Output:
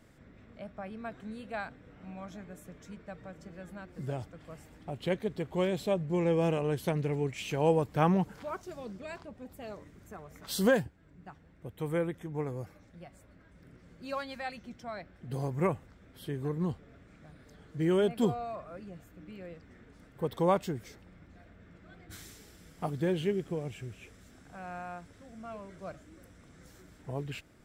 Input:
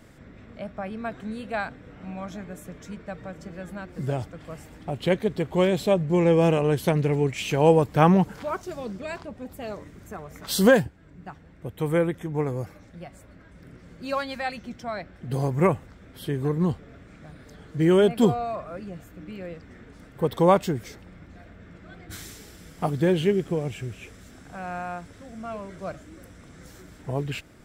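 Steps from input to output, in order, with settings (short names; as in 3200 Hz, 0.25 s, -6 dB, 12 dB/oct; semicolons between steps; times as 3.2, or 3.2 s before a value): gain -8.5 dB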